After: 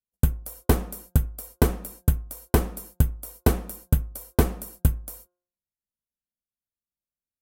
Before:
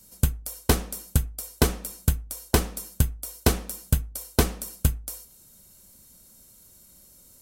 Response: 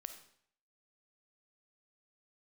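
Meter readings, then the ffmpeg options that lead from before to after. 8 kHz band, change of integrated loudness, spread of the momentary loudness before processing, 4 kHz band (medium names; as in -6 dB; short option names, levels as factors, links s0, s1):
-6.5 dB, +0.5 dB, 8 LU, -8.5 dB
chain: -filter_complex "[0:a]agate=range=0.00631:threshold=0.00708:ratio=16:detection=peak,equalizer=f=5200:w=0.45:g=-11.5,bandreject=f=177.7:t=h:w=4,bandreject=f=355.4:t=h:w=4,bandreject=f=533.1:t=h:w=4,bandreject=f=710.8:t=h:w=4,bandreject=f=888.5:t=h:w=4,bandreject=f=1066.2:t=h:w=4,bandreject=f=1243.9:t=h:w=4,bandreject=f=1421.6:t=h:w=4,bandreject=f=1599.3:t=h:w=4,asplit=2[s0][s1];[s1]volume=3.98,asoftclip=hard,volume=0.251,volume=0.266[s2];[s0][s2]amix=inputs=2:normalize=0"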